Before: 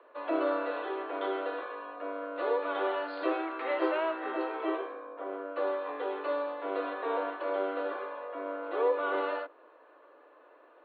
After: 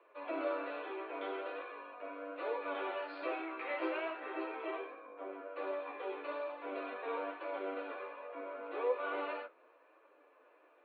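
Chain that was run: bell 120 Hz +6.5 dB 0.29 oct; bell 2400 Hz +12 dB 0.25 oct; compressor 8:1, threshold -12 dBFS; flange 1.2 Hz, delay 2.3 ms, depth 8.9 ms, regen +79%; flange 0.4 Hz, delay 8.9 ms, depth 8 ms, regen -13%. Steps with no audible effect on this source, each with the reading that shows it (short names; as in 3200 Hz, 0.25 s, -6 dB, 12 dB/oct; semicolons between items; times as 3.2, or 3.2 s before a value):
bell 120 Hz: input band starts at 250 Hz; compressor, threshold -12 dBFS: input peak -15.0 dBFS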